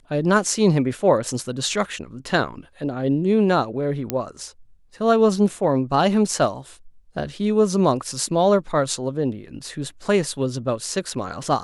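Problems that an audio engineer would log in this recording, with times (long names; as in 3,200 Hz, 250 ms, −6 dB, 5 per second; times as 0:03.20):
0:04.10: click −6 dBFS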